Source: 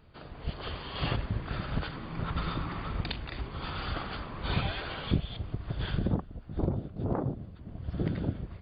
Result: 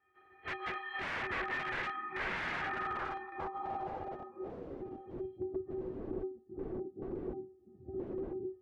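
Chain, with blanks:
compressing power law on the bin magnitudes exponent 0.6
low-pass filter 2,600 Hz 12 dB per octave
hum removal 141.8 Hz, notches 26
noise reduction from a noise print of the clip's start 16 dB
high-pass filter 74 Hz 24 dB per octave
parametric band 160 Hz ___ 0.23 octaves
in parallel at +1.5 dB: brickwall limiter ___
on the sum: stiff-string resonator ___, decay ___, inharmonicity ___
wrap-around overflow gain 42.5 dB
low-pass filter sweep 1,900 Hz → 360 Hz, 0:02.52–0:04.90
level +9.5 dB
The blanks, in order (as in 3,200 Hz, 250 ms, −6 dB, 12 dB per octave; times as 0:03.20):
−7.5 dB, −24 dBFS, 370 Hz, 0.37 s, 0.03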